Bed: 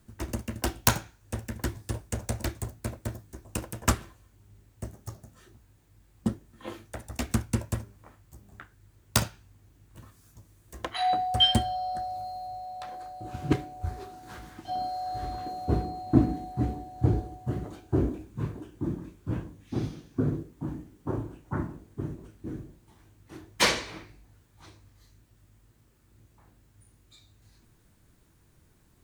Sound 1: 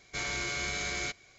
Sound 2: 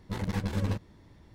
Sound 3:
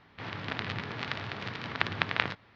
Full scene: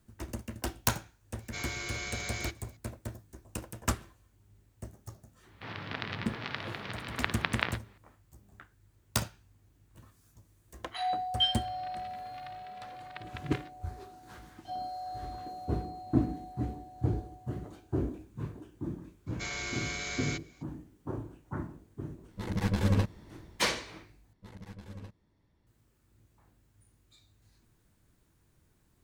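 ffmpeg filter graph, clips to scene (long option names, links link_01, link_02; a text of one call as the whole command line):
ffmpeg -i bed.wav -i cue0.wav -i cue1.wav -i cue2.wav -filter_complex "[1:a]asplit=2[link_01][link_02];[3:a]asplit=2[link_03][link_04];[2:a]asplit=2[link_05][link_06];[0:a]volume=-6dB[link_07];[link_04]asplit=2[link_08][link_09];[link_09]adelay=2.7,afreqshift=1.6[link_10];[link_08][link_10]amix=inputs=2:normalize=1[link_11];[link_05]dynaudnorm=framelen=130:gausssize=5:maxgain=8.5dB[link_12];[link_07]asplit=2[link_13][link_14];[link_13]atrim=end=24.334[link_15];[link_06]atrim=end=1.34,asetpts=PTS-STARTPTS,volume=-16dB[link_16];[link_14]atrim=start=25.666[link_17];[link_01]atrim=end=1.38,asetpts=PTS-STARTPTS,volume=-4.5dB,afade=type=in:duration=0.004:curve=hsin,afade=type=out:start_time=1.376:duration=0.004:curve=hsin,adelay=1390[link_18];[link_03]atrim=end=2.55,asetpts=PTS-STARTPTS,volume=-2.5dB,afade=type=in:duration=0.004:curve=hsin,afade=type=out:start_time=2.546:duration=0.004:curve=hsin,adelay=5430[link_19];[link_11]atrim=end=2.55,asetpts=PTS-STARTPTS,volume=-14dB,afade=type=in:duration=0.004:curve=hsin,afade=type=out:start_time=2.546:duration=0.004:curve=hsin,adelay=11350[link_20];[link_02]atrim=end=1.38,asetpts=PTS-STARTPTS,volume=-3dB,afade=type=in:duration=0.02,afade=type=out:start_time=1.36:duration=0.02,adelay=19260[link_21];[link_12]atrim=end=1.34,asetpts=PTS-STARTPTS,volume=-5dB,afade=type=in:duration=0.004:curve=hsin,afade=type=out:start_time=1.336:duration=0.004:curve=hsin,adelay=982548S[link_22];[link_15][link_16]acrossfade=duration=0.004:curve1=hsin:curve2=hsin[link_23];[link_23][link_17]acrossfade=duration=0.004:curve1=hsin:curve2=hsin[link_24];[link_24][link_18][link_19][link_20][link_21][link_22]amix=inputs=6:normalize=0" out.wav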